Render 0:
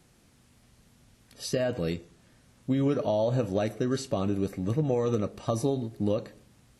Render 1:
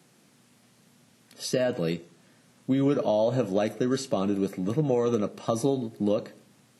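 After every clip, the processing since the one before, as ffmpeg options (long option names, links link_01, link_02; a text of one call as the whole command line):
ffmpeg -i in.wav -af "highpass=frequency=140:width=0.5412,highpass=frequency=140:width=1.3066,volume=2.5dB" out.wav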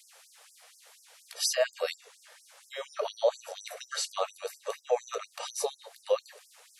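ffmpeg -i in.wav -af "acompressor=threshold=-34dB:ratio=1.5,afftfilt=real='re*gte(b*sr/1024,420*pow(5000/420,0.5+0.5*sin(2*PI*4.2*pts/sr)))':imag='im*gte(b*sr/1024,420*pow(5000/420,0.5+0.5*sin(2*PI*4.2*pts/sr)))':win_size=1024:overlap=0.75,volume=8dB" out.wav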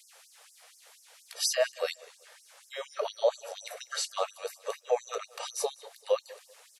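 ffmpeg -i in.wav -af "aecho=1:1:193|386:0.0794|0.0214" out.wav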